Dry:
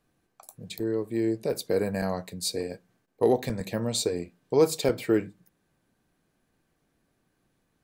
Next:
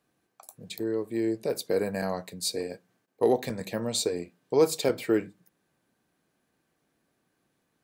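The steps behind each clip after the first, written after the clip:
high-pass filter 190 Hz 6 dB per octave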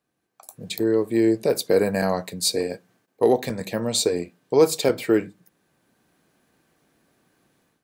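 automatic gain control gain up to 14 dB
level −4.5 dB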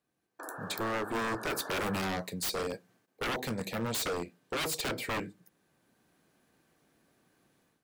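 wave folding −23 dBFS
sound drawn into the spectrogram noise, 0:00.39–0:01.99, 260–1,800 Hz −39 dBFS
level −4.5 dB

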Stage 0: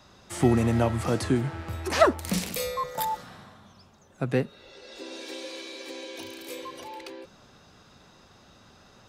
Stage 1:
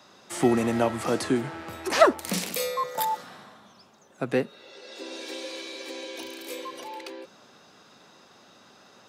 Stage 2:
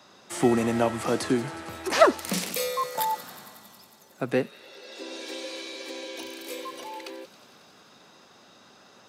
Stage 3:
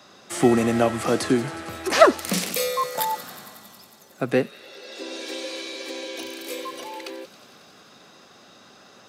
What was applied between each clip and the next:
high-pass filter 230 Hz 12 dB per octave; level +2 dB
delay with a high-pass on its return 91 ms, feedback 84%, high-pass 3,000 Hz, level −14 dB
notch filter 920 Hz, Q 11; level +4 dB

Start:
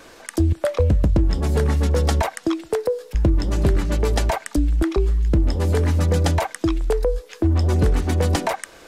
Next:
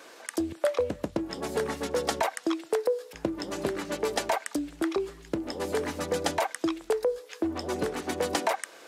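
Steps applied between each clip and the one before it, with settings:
high-pass filter 330 Hz 12 dB per octave
level −3.5 dB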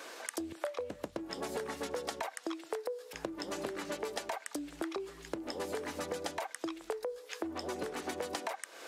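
low-shelf EQ 220 Hz −8.5 dB
downward compressor 6 to 1, threshold −38 dBFS, peak gain reduction 15 dB
level +2.5 dB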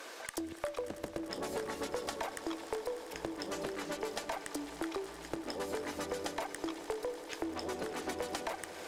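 tube saturation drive 25 dB, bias 0.45
echo that builds up and dies away 99 ms, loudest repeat 5, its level −17 dB
level +1.5 dB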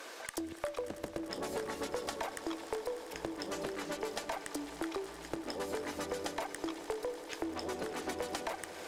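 no processing that can be heard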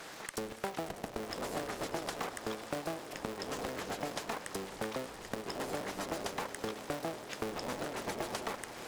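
sub-harmonics by changed cycles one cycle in 3, inverted

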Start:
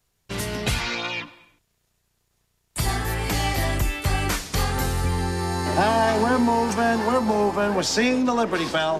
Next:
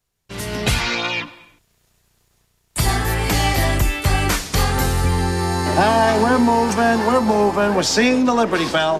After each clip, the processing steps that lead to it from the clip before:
automatic gain control gain up to 13.5 dB
level −4.5 dB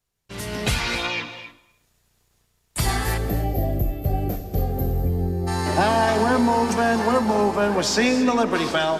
gain on a spectral selection 0:03.17–0:05.47, 780–12,000 Hz −22 dB
reverb whose tail is shaped and stops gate 300 ms rising, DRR 10.5 dB
level −4 dB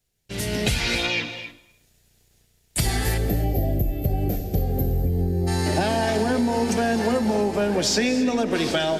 parametric band 1,100 Hz −12 dB 0.76 octaves
downward compressor, threshold −23 dBFS, peak gain reduction 7 dB
level +4.5 dB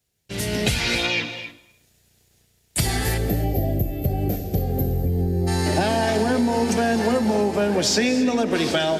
high-pass filter 57 Hz
level +1.5 dB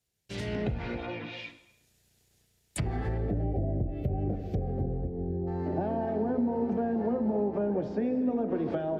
treble cut that deepens with the level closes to 700 Hz, closed at −17.5 dBFS
hum removal 86.4 Hz, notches 33
level −7 dB

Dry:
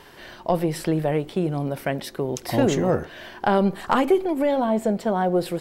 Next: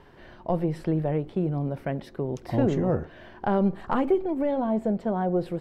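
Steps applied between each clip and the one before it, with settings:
low-pass filter 1,300 Hz 6 dB per octave
low-shelf EQ 180 Hz +7.5 dB
level −5 dB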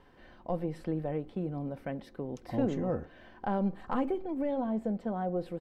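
comb filter 3.9 ms, depth 34%
level −7.5 dB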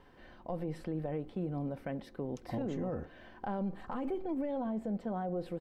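brickwall limiter −28.5 dBFS, peak gain reduction 10.5 dB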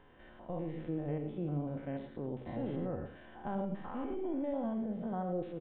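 spectrum averaged block by block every 100 ms
reverb whose tail is shaped and stops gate 130 ms rising, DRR 7.5 dB
downsampling to 8,000 Hz

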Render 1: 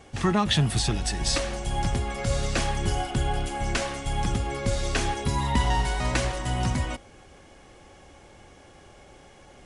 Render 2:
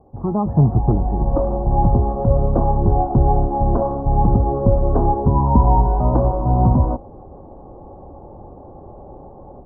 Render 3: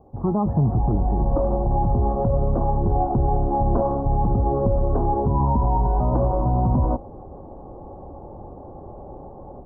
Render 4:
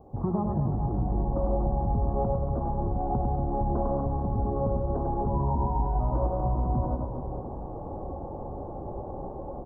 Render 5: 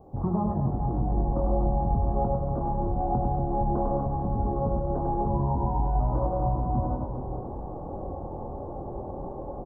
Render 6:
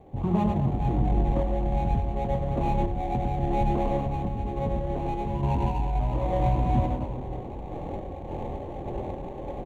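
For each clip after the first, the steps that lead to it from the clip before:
Butterworth low-pass 1,000 Hz 48 dB per octave; automatic gain control gain up to 13 dB
brickwall limiter −12 dBFS, peak gain reduction 9.5 dB
downward compressor 4 to 1, threshold −27 dBFS, peak gain reduction 10 dB; on a send: reverse bouncing-ball delay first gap 100 ms, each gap 1.4×, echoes 5
double-tracking delay 23 ms −6 dB
running median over 25 samples; sample-and-hold tremolo; level +3.5 dB

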